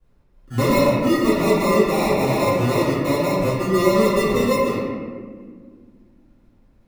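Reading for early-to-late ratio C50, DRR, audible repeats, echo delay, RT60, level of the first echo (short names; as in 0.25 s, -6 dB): -2.0 dB, -13.0 dB, none, none, 1.8 s, none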